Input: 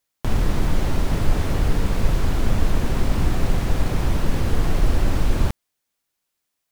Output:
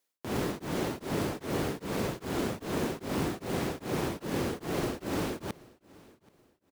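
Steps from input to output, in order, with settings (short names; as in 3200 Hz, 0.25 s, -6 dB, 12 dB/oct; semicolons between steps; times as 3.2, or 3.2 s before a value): HPF 170 Hz 12 dB/oct; bell 380 Hz +5.5 dB 0.96 oct; in parallel at -2 dB: limiter -23.5 dBFS, peak gain reduction 9 dB; on the sum: short-mantissa float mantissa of 2-bit; on a send: feedback echo 0.779 s, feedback 32%, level -23.5 dB; on the sum: beating tremolo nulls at 2.5 Hz; gain -6.5 dB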